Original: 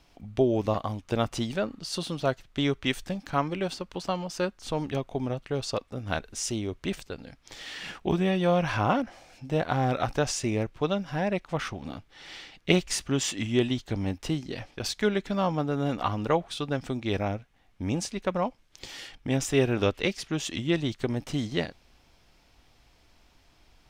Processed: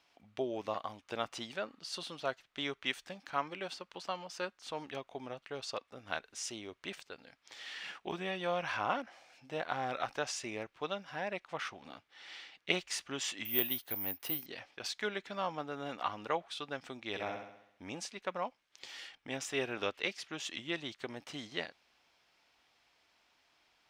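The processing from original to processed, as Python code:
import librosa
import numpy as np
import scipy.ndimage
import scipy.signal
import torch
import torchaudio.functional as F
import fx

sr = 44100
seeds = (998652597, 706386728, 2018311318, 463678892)

y = fx.resample_bad(x, sr, factor=3, down='filtered', up='zero_stuff', at=(13.45, 14.46))
y = fx.room_flutter(y, sr, wall_m=11.4, rt60_s=0.74, at=(17.09, 17.84))
y = fx.highpass(y, sr, hz=1400.0, slope=6)
y = fx.high_shelf(y, sr, hz=5100.0, db=-11.5)
y = y * 10.0 ** (-1.5 / 20.0)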